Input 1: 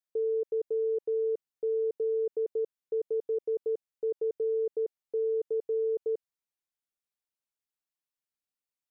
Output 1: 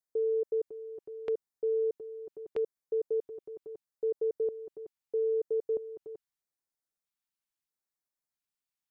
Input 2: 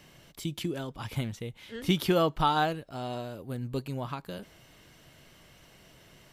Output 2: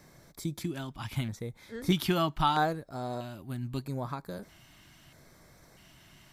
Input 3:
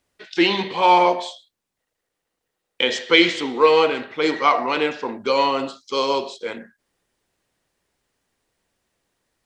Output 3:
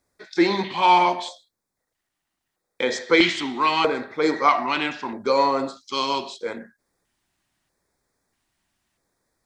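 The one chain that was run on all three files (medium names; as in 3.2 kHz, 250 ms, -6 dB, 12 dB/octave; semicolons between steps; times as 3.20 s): LFO notch square 0.78 Hz 480–2900 Hz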